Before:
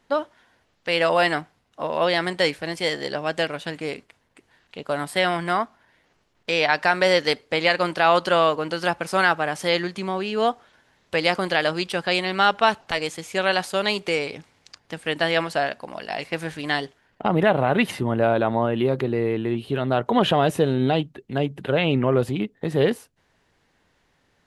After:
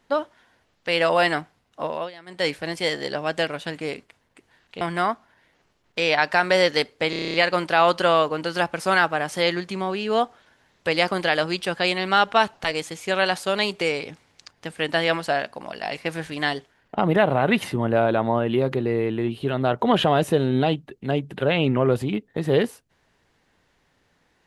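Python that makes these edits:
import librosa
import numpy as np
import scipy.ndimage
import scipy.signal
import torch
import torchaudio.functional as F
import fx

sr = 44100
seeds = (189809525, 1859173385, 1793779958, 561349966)

y = fx.edit(x, sr, fx.fade_down_up(start_s=1.85, length_s=0.67, db=-21.5, fade_s=0.26),
    fx.cut(start_s=4.81, length_s=0.51),
    fx.stutter(start_s=7.61, slice_s=0.03, count=9), tone=tone)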